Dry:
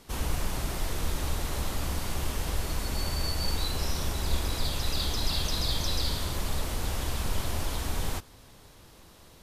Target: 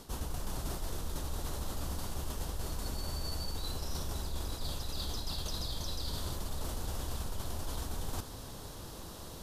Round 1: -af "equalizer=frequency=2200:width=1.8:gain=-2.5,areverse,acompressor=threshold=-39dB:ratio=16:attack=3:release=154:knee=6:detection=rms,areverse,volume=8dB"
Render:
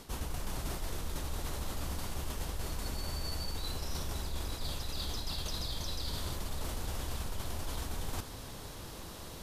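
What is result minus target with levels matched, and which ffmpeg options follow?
2,000 Hz band +3.5 dB
-af "equalizer=frequency=2200:width=1.8:gain=-9,areverse,acompressor=threshold=-39dB:ratio=16:attack=3:release=154:knee=6:detection=rms,areverse,volume=8dB"

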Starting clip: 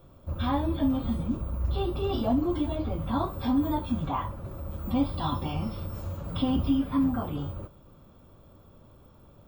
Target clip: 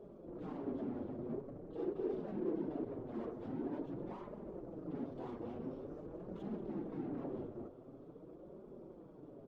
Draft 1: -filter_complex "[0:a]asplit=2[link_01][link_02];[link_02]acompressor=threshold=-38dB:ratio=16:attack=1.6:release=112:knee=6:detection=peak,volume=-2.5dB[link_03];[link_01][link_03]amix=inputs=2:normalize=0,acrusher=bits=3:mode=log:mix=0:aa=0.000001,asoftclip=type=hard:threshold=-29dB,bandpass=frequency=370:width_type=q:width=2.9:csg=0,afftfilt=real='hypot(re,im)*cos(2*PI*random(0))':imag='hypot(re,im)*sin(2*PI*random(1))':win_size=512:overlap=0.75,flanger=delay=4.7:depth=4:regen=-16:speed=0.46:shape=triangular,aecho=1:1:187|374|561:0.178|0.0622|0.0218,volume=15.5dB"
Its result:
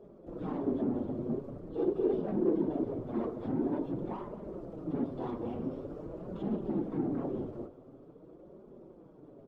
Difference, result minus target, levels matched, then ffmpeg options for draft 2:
downward compressor: peak gain reduction −9.5 dB; hard clipping: distortion −4 dB
-filter_complex "[0:a]asplit=2[link_01][link_02];[link_02]acompressor=threshold=-48dB:ratio=16:attack=1.6:release=112:knee=6:detection=peak,volume=-2.5dB[link_03];[link_01][link_03]amix=inputs=2:normalize=0,acrusher=bits=3:mode=log:mix=0:aa=0.000001,asoftclip=type=hard:threshold=-39dB,bandpass=frequency=370:width_type=q:width=2.9:csg=0,afftfilt=real='hypot(re,im)*cos(2*PI*random(0))':imag='hypot(re,im)*sin(2*PI*random(1))':win_size=512:overlap=0.75,flanger=delay=4.7:depth=4:regen=-16:speed=0.46:shape=triangular,aecho=1:1:187|374|561:0.178|0.0622|0.0218,volume=15.5dB"

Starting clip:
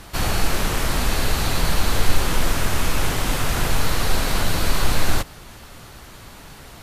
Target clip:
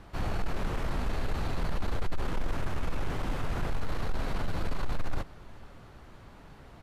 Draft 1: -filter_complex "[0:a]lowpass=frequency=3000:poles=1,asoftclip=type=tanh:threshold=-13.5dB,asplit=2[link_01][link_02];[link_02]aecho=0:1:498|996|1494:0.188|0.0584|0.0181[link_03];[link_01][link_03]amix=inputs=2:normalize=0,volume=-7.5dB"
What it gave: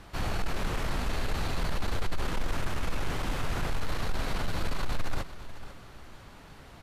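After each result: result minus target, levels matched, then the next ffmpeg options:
echo-to-direct +9.5 dB; 4,000 Hz band +5.0 dB
-filter_complex "[0:a]lowpass=frequency=3000:poles=1,asoftclip=type=tanh:threshold=-13.5dB,asplit=2[link_01][link_02];[link_02]aecho=0:1:498|996:0.0631|0.0196[link_03];[link_01][link_03]amix=inputs=2:normalize=0,volume=-7.5dB"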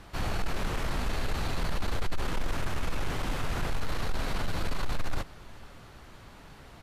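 4,000 Hz band +5.0 dB
-filter_complex "[0:a]lowpass=frequency=1200:poles=1,asoftclip=type=tanh:threshold=-13.5dB,asplit=2[link_01][link_02];[link_02]aecho=0:1:498|996:0.0631|0.0196[link_03];[link_01][link_03]amix=inputs=2:normalize=0,volume=-7.5dB"

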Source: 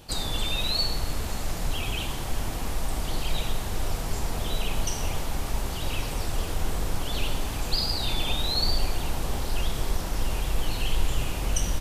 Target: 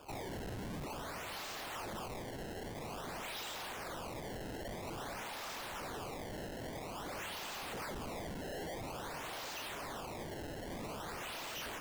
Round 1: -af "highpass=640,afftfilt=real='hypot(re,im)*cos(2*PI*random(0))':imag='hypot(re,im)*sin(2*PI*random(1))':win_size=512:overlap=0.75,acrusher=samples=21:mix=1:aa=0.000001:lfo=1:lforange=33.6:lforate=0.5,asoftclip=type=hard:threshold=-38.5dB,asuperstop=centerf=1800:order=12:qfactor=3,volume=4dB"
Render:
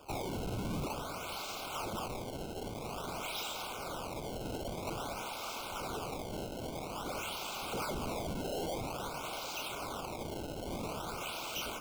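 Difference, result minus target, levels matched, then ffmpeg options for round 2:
2,000 Hz band −3.5 dB; hard clipping: distortion −4 dB
-af "highpass=640,afftfilt=real='hypot(re,im)*cos(2*PI*random(0))':imag='hypot(re,im)*sin(2*PI*random(1))':win_size=512:overlap=0.75,acrusher=samples=21:mix=1:aa=0.000001:lfo=1:lforange=33.6:lforate=0.5,asoftclip=type=hard:threshold=-45.5dB,volume=4dB"

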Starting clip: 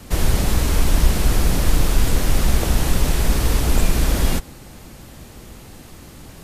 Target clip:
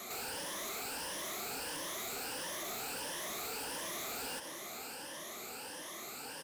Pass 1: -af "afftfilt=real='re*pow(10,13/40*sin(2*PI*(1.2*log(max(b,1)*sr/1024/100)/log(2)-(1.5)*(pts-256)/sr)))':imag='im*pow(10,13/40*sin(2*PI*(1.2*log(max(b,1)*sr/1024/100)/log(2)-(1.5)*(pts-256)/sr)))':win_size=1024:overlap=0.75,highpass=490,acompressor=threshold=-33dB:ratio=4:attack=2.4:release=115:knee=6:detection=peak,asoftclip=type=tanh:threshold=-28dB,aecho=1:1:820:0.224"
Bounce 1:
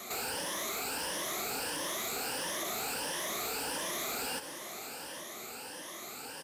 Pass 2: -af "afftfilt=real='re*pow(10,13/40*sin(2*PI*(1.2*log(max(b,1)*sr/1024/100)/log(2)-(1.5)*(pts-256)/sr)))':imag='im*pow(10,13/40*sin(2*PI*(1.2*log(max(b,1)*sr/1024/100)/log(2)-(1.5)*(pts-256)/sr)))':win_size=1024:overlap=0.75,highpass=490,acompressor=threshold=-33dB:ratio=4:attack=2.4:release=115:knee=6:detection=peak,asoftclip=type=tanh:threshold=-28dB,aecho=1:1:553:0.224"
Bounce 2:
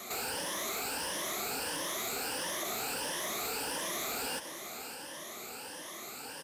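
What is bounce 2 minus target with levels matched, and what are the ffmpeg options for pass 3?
soft clipping: distortion −11 dB
-af "afftfilt=real='re*pow(10,13/40*sin(2*PI*(1.2*log(max(b,1)*sr/1024/100)/log(2)-(1.5)*(pts-256)/sr)))':imag='im*pow(10,13/40*sin(2*PI*(1.2*log(max(b,1)*sr/1024/100)/log(2)-(1.5)*(pts-256)/sr)))':win_size=1024:overlap=0.75,highpass=490,acompressor=threshold=-33dB:ratio=4:attack=2.4:release=115:knee=6:detection=peak,asoftclip=type=tanh:threshold=-38.5dB,aecho=1:1:553:0.224"

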